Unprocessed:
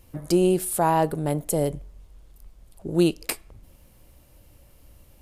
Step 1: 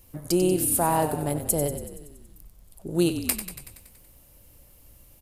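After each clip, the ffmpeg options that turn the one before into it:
ffmpeg -i in.wav -filter_complex "[0:a]highshelf=frequency=7100:gain=11,asplit=2[link_01][link_02];[link_02]asplit=8[link_03][link_04][link_05][link_06][link_07][link_08][link_09][link_10];[link_03]adelay=94,afreqshift=-33,volume=-10dB[link_11];[link_04]adelay=188,afreqshift=-66,volume=-13.9dB[link_12];[link_05]adelay=282,afreqshift=-99,volume=-17.8dB[link_13];[link_06]adelay=376,afreqshift=-132,volume=-21.6dB[link_14];[link_07]adelay=470,afreqshift=-165,volume=-25.5dB[link_15];[link_08]adelay=564,afreqshift=-198,volume=-29.4dB[link_16];[link_09]adelay=658,afreqshift=-231,volume=-33.3dB[link_17];[link_10]adelay=752,afreqshift=-264,volume=-37.1dB[link_18];[link_11][link_12][link_13][link_14][link_15][link_16][link_17][link_18]amix=inputs=8:normalize=0[link_19];[link_01][link_19]amix=inputs=2:normalize=0,volume=-3dB" out.wav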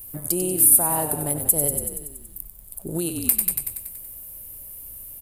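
ffmpeg -i in.wav -af "alimiter=limit=-19.5dB:level=0:latency=1:release=182,aexciter=amount=5.8:drive=5.3:freq=8200,volume=2.5dB" out.wav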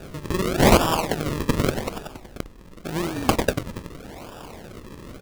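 ffmpeg -i in.wav -af "acrusher=samples=41:mix=1:aa=0.000001:lfo=1:lforange=41:lforate=0.86" out.wav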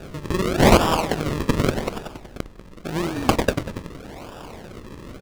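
ffmpeg -i in.wav -filter_complex "[0:a]highshelf=frequency=9300:gain=-7,asplit=2[link_01][link_02];[link_02]adelay=192.4,volume=-16dB,highshelf=frequency=4000:gain=-4.33[link_03];[link_01][link_03]amix=inputs=2:normalize=0,volume=1.5dB" out.wav

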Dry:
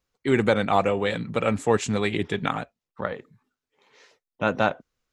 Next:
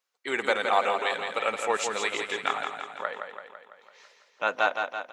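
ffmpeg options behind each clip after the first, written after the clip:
ffmpeg -i in.wav -filter_complex "[0:a]highpass=700,asplit=2[link_01][link_02];[link_02]aecho=0:1:167|334|501|668|835|1002|1169|1336:0.501|0.291|0.169|0.0978|0.0567|0.0329|0.0191|0.0111[link_03];[link_01][link_03]amix=inputs=2:normalize=0" out.wav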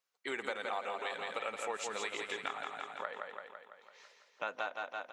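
ffmpeg -i in.wav -af "acompressor=threshold=-31dB:ratio=4,volume=-4.5dB" out.wav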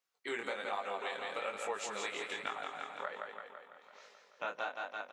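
ffmpeg -i in.wav -filter_complex "[0:a]asplit=2[link_01][link_02];[link_02]adelay=932.9,volume=-18dB,highshelf=frequency=4000:gain=-21[link_03];[link_01][link_03]amix=inputs=2:normalize=0,flanger=delay=19:depth=6.8:speed=1.2,volume=2.5dB" out.wav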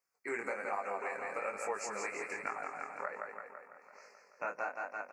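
ffmpeg -i in.wav -af "asuperstop=centerf=3400:order=8:qfactor=1.7,volume=1dB" out.wav

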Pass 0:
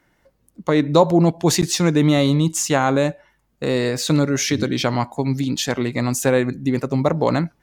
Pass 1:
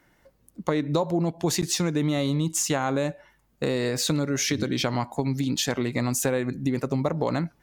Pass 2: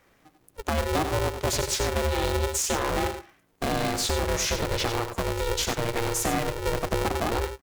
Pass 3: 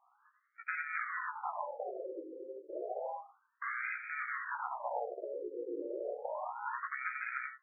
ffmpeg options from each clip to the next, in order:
ffmpeg -i in.wav -af "highshelf=frequency=11000:gain=4,acompressor=threshold=-22dB:ratio=5" out.wav
ffmpeg -i in.wav -af "asoftclip=type=tanh:threshold=-18dB,aecho=1:1:92:0.376,aeval=exprs='val(0)*sgn(sin(2*PI*230*n/s))':channel_layout=same" out.wav
ffmpeg -i in.wav -af "flanger=delay=15.5:depth=2.4:speed=0.41,afftfilt=real='re*lt(hypot(re,im),0.126)':imag='im*lt(hypot(re,im),0.126)':win_size=1024:overlap=0.75,afftfilt=real='re*between(b*sr/1024,380*pow(1800/380,0.5+0.5*sin(2*PI*0.31*pts/sr))/1.41,380*pow(1800/380,0.5+0.5*sin(2*PI*0.31*pts/sr))*1.41)':imag='im*between(b*sr/1024,380*pow(1800/380,0.5+0.5*sin(2*PI*0.31*pts/sr))/1.41,380*pow(1800/380,0.5+0.5*sin(2*PI*0.31*pts/sr))*1.41)':win_size=1024:overlap=0.75,volume=2dB" out.wav

